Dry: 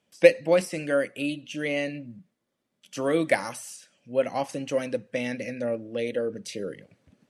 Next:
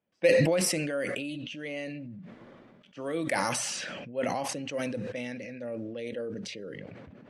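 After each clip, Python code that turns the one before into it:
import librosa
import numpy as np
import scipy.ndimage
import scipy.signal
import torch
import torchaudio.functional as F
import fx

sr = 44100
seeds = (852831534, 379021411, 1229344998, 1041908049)

y = fx.env_lowpass(x, sr, base_hz=1900.0, full_db=-23.0)
y = fx.sustainer(y, sr, db_per_s=22.0)
y = F.gain(torch.from_numpy(y), -9.0).numpy()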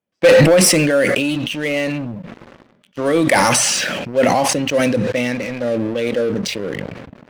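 y = fx.leveller(x, sr, passes=3)
y = F.gain(torch.from_numpy(y), 5.5).numpy()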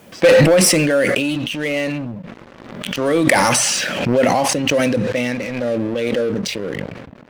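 y = fx.pre_swell(x, sr, db_per_s=50.0)
y = F.gain(torch.from_numpy(y), -1.0).numpy()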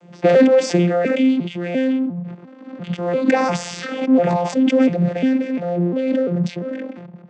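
y = fx.vocoder_arp(x, sr, chord='bare fifth', root=53, every_ms=348)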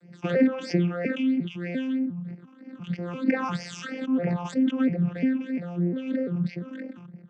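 y = fx.phaser_stages(x, sr, stages=8, low_hz=540.0, high_hz=1100.0, hz=3.1, feedback_pct=40)
y = fx.env_lowpass_down(y, sr, base_hz=2700.0, full_db=-15.5)
y = F.gain(torch.from_numpy(y), -5.5).numpy()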